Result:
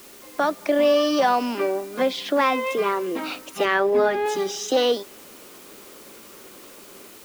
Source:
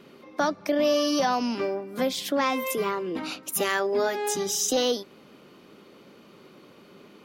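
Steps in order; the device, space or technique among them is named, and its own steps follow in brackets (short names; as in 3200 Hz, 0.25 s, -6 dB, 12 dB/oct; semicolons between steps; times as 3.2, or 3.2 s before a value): dictaphone (BPF 290–3400 Hz; AGC gain up to 4 dB; wow and flutter 29 cents; white noise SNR 23 dB); 3.65–4.26 tone controls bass +10 dB, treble -8 dB; gain +1.5 dB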